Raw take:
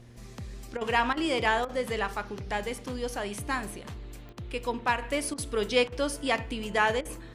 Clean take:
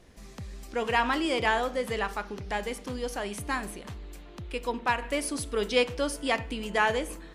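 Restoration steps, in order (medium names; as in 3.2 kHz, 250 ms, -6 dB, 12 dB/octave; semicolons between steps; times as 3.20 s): de-click; de-hum 119.1 Hz, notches 4; interpolate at 0.77/1.13/1.65/4.33/5.34/5.88/7.01 s, 40 ms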